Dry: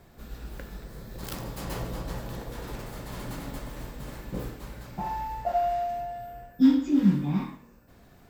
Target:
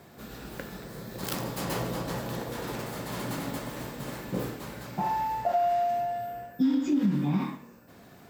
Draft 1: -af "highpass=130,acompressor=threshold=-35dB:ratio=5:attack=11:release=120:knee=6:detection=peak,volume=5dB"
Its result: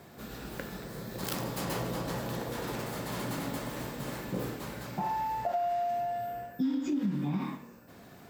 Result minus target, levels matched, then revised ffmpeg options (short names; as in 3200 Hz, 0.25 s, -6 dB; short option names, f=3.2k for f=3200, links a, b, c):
compressor: peak gain reduction +5.5 dB
-af "highpass=130,acompressor=threshold=-28dB:ratio=5:attack=11:release=120:knee=6:detection=peak,volume=5dB"